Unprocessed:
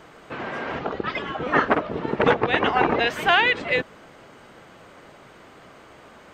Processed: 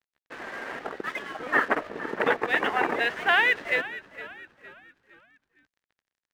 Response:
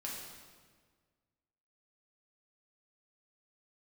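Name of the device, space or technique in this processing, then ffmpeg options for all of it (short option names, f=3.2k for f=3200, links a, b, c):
pocket radio on a weak battery: -filter_complex "[0:a]highpass=250,lowpass=4.4k,aeval=exprs='sgn(val(0))*max(abs(val(0))-0.0106,0)':c=same,equalizer=f=1.8k:t=o:w=0.43:g=8,asplit=5[a][b][c][d][e];[b]adelay=461,afreqshift=-53,volume=-15.5dB[f];[c]adelay=922,afreqshift=-106,volume=-23.2dB[g];[d]adelay=1383,afreqshift=-159,volume=-31dB[h];[e]adelay=1844,afreqshift=-212,volume=-38.7dB[i];[a][f][g][h][i]amix=inputs=5:normalize=0,volume=-5.5dB"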